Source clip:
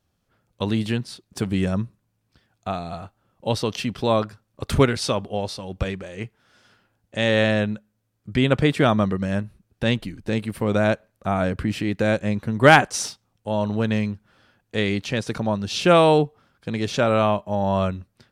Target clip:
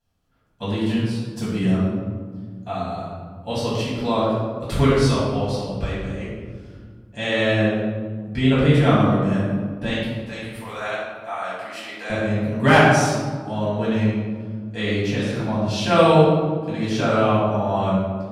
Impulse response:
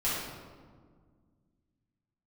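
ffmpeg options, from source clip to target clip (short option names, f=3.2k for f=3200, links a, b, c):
-filter_complex "[0:a]asettb=1/sr,asplit=3[a][b][c];[a]atrim=end=9.894[d];[b]atrim=start=9.89:end=12.1,asetpts=PTS-STARTPTS,afade=t=in:d=0.004:c=qsin,afade=t=out:st=2.206:d=0.004:c=qsin,highpass=870[e];[c]atrim=start=12.096[f];[d][e]acrossfade=d=0.004:c1=hsin:c2=qsin[g];[g][f]acrossfade=d=0.004:c1=qsin:c2=hsin[h];[1:a]atrim=start_sample=2205[i];[h][i]afir=irnorm=-1:irlink=0,volume=-8dB"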